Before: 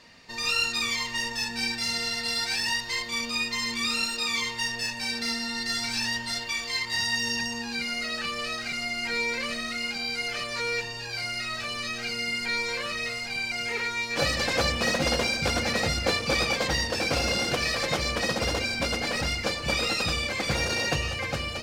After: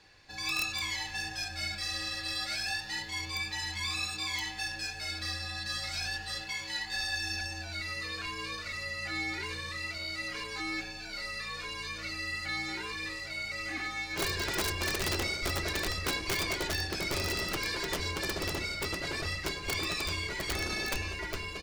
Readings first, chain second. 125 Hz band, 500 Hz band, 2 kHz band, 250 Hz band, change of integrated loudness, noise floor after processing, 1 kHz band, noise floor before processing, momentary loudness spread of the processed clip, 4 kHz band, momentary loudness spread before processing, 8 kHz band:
−5.0 dB, −9.0 dB, −6.0 dB, −7.5 dB, −6.5 dB, −42 dBFS, −7.0 dB, −36 dBFS, 6 LU, −6.5 dB, 5 LU, −5.5 dB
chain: echo with shifted repeats 98 ms, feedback 31%, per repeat +110 Hz, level −18 dB
wrap-around overflow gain 16.5 dB
frequency shifter −150 Hz
level −6.5 dB

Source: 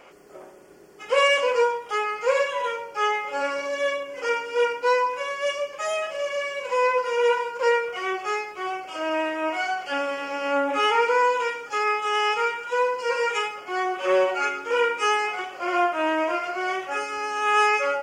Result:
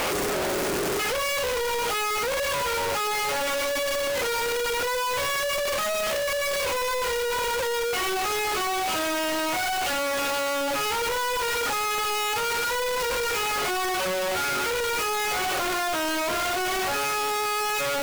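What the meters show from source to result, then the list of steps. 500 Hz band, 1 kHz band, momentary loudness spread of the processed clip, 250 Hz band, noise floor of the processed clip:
−3.0 dB, −2.5 dB, 1 LU, 0.0 dB, −26 dBFS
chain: sign of each sample alone
level −1.5 dB

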